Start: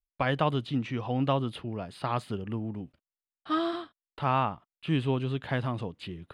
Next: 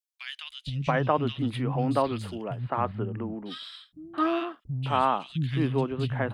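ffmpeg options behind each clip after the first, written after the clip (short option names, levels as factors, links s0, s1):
-filter_complex "[0:a]acrossover=split=200|2300[s0][s1][s2];[s0]adelay=470[s3];[s1]adelay=680[s4];[s3][s4][s2]amix=inputs=3:normalize=0,volume=1.5"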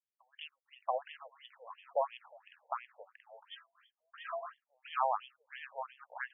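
-af "aeval=exprs='0.316*(cos(1*acos(clip(val(0)/0.316,-1,1)))-cos(1*PI/2))+0.0141*(cos(4*acos(clip(val(0)/0.316,-1,1)))-cos(4*PI/2))':c=same,afftfilt=real='re*between(b*sr/1024,650*pow(2500/650,0.5+0.5*sin(2*PI*2.9*pts/sr))/1.41,650*pow(2500/650,0.5+0.5*sin(2*PI*2.9*pts/sr))*1.41)':imag='im*between(b*sr/1024,650*pow(2500/650,0.5+0.5*sin(2*PI*2.9*pts/sr))/1.41,650*pow(2500/650,0.5+0.5*sin(2*PI*2.9*pts/sr))*1.41)':win_size=1024:overlap=0.75,volume=0.596"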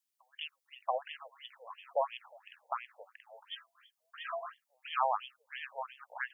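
-af "highshelf=f=2800:g=11"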